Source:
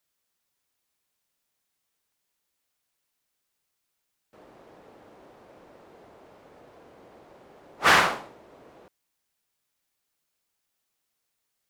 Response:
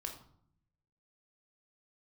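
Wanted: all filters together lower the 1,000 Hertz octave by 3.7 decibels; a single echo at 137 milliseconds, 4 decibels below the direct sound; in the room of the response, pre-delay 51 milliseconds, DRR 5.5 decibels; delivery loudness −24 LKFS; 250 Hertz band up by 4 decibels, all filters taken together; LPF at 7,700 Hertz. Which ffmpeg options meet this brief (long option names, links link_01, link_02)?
-filter_complex "[0:a]lowpass=7700,equalizer=frequency=250:width_type=o:gain=6,equalizer=frequency=1000:width_type=o:gain=-5,aecho=1:1:137:0.631,asplit=2[link_01][link_02];[1:a]atrim=start_sample=2205,adelay=51[link_03];[link_02][link_03]afir=irnorm=-1:irlink=0,volume=-4dB[link_04];[link_01][link_04]amix=inputs=2:normalize=0,volume=-2.5dB"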